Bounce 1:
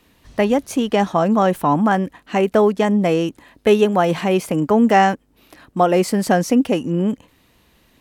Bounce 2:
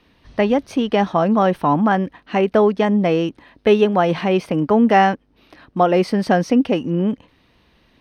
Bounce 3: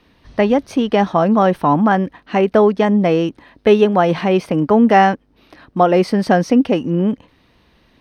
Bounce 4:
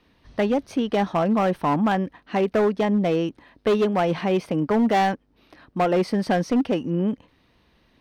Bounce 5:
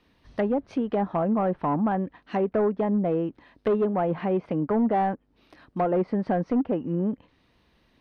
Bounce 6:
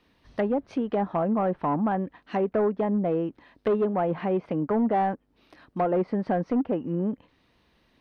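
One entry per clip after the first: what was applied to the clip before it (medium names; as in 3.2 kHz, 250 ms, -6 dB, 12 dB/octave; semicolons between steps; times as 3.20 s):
Savitzky-Golay filter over 15 samples
peaking EQ 2.8 kHz -2 dB; trim +2.5 dB
hard clipper -9 dBFS, distortion -15 dB; trim -6.5 dB
low-pass that closes with the level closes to 1.2 kHz, closed at -19 dBFS; trim -3 dB
bass shelf 180 Hz -3 dB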